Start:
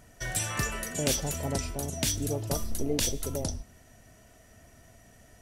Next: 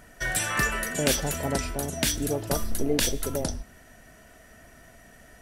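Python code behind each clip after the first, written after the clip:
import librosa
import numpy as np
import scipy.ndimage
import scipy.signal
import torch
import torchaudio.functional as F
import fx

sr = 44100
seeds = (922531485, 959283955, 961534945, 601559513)

y = fx.graphic_eq_15(x, sr, hz=(100, 1600, 6300), db=(-9, 6, -4))
y = y * librosa.db_to_amplitude(4.5)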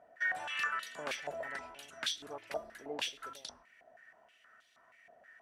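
y = fx.filter_held_bandpass(x, sr, hz=6.3, low_hz=670.0, high_hz=3600.0)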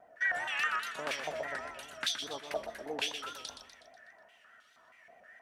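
y = fx.echo_feedback(x, sr, ms=123, feedback_pct=51, wet_db=-8.5)
y = fx.vibrato(y, sr, rate_hz=4.9, depth_cents=81.0)
y = y * librosa.db_to_amplitude(2.5)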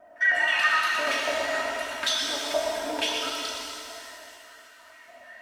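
y = x + 0.71 * np.pad(x, (int(3.2 * sr / 1000.0), 0))[:len(x)]
y = fx.rev_shimmer(y, sr, seeds[0], rt60_s=2.5, semitones=7, shimmer_db=-8, drr_db=-1.0)
y = y * librosa.db_to_amplitude(3.5)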